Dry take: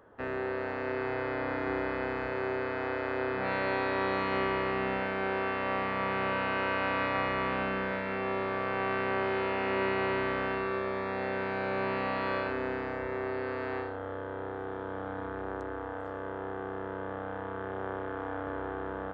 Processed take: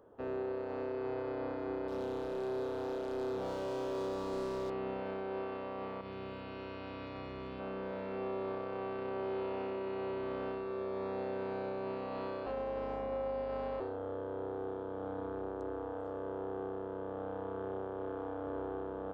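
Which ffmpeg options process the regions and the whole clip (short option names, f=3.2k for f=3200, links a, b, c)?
-filter_complex "[0:a]asettb=1/sr,asplit=3[a][b][c];[a]atrim=end=1.884[d];[b]atrim=start=1.88:end=4.7,asetpts=PTS-STARTPTS,afade=t=in:d=0.004:c=qsin,afade=t=out:st=2.816:d=0.004:c=qsin,acrossover=split=2500[e][f];[f]acompressor=threshold=-57dB:ratio=4:attack=1:release=60[g];[e][g]amix=inputs=2:normalize=0,asoftclip=type=hard:threshold=-32.5dB[h];[c]atrim=start=4.696[i];[d][h]acrossfade=d=0.004:c1=hsin:c2=qsin[j];[j][i]acrossfade=d=0.004:c1=qsin:c2=hsin,asettb=1/sr,asplit=3[k][l][m];[k]atrim=end=6.014[n];[l]atrim=start=6.01:end=7.6,asetpts=PTS-STARTPTS,afade=t=in:d=0.004:c=qsin,afade=t=out:st=1.586:d=0.004:c=qsin,equalizer=f=760:w=0.36:g=-12,asplit=2[o][p];[p]adelay=34,volume=-14dB[q];[o][q]amix=inputs=2:normalize=0,atrim=end_sample=70119[r];[m]atrim=start=7.596[s];[n][r]acrossfade=d=0.004:c1=hsin:c2=qsin[t];[t][s]acrossfade=d=0.004:c1=qsin:c2=hsin,asettb=1/sr,asplit=3[u][v][w];[u]atrim=end=12.464[x];[v]atrim=start=12.46:end=13.8,asetpts=PTS-STARTPTS,afade=t=in:d=0.004:c=qsin,afade=t=out:st=1.336:d=0.004:c=qsin,afreqshift=150,aecho=1:1:3.8:0.68,atrim=end_sample=59094,aeval=exprs='val(0)+0.00794*(sin(2*PI*50*n/s)+sin(2*PI*2*50*n/s)/2+sin(2*PI*3*50*n/s)/3+sin(2*PI*4*50*n/s)/4+sin(2*PI*5*50*n/s)/5)':c=same[y];[w]atrim=start=13.796[z];[x][y]acrossfade=d=0.004:c1=hsin:c2=qsin[aa];[aa][z]acrossfade=d=0.004:c1=qsin:c2=hsin,equalizer=f=420:t=o:w=1.4:g=5.5,alimiter=level_in=0.5dB:limit=-24dB:level=0:latency=1:release=53,volume=-0.5dB,equalizer=f=1.9k:t=o:w=0.88:g=-11.5,volume=-5dB"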